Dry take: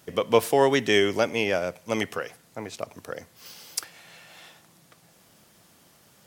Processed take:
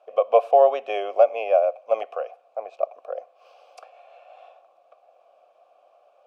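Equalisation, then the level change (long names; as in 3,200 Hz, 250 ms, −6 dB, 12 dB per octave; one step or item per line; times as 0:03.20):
formant filter a
high-pass with resonance 550 Hz, resonance Q 4.9
high-shelf EQ 3,300 Hz −7.5 dB
+6.5 dB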